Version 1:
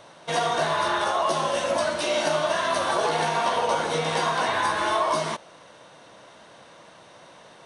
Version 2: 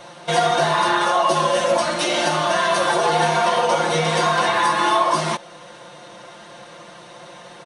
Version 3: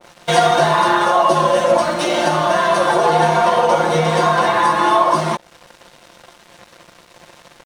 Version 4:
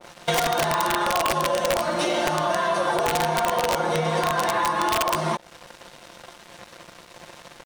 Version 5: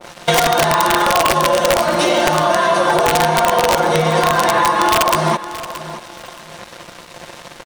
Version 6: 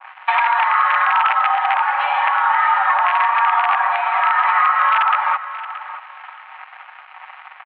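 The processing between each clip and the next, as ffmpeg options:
-filter_complex "[0:a]aecho=1:1:5.7:1,asplit=2[a][b];[b]alimiter=limit=-19dB:level=0:latency=1:release=356,volume=-1.5dB[c];[a][c]amix=inputs=2:normalize=0"
-af "aeval=exprs='sgn(val(0))*max(abs(val(0))-0.0106,0)':c=same,adynamicequalizer=threshold=0.0251:dfrequency=1600:dqfactor=0.7:tfrequency=1600:tqfactor=0.7:attack=5:release=100:ratio=0.375:range=3.5:mode=cutabove:tftype=highshelf,volume=5.5dB"
-af "aeval=exprs='(mod(1.78*val(0)+1,2)-1)/1.78':c=same,acompressor=threshold=-20dB:ratio=6"
-af "aecho=1:1:625|1250|1875:0.2|0.0479|0.0115,volume=8.5dB"
-af "highpass=f=580:t=q:w=0.5412,highpass=f=580:t=q:w=1.307,lowpass=f=2.4k:t=q:w=0.5176,lowpass=f=2.4k:t=q:w=0.7071,lowpass=f=2.4k:t=q:w=1.932,afreqshift=230"

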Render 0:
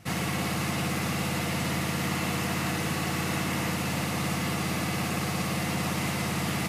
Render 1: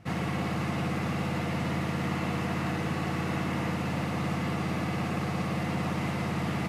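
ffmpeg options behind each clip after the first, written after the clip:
-af "lowpass=f=1.6k:p=1"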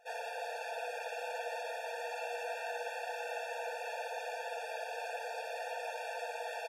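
-af "aecho=1:1:4.5:0.53,areverse,acompressor=mode=upward:threshold=-46dB:ratio=2.5,areverse,afftfilt=real='re*eq(mod(floor(b*sr/1024/470),2),1)':imag='im*eq(mod(floor(b*sr/1024/470),2),1)':win_size=1024:overlap=0.75,volume=-3dB"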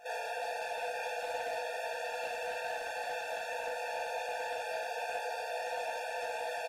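-filter_complex "[0:a]volume=34dB,asoftclip=hard,volume=-34dB,alimiter=level_in=18dB:limit=-24dB:level=0:latency=1,volume=-18dB,asplit=2[a][b];[b]aecho=0:1:14|34:0.596|0.631[c];[a][c]amix=inputs=2:normalize=0,volume=8.5dB"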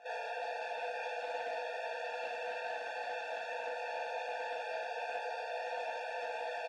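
-af "highpass=200,lowpass=4.5k,volume=-2dB"

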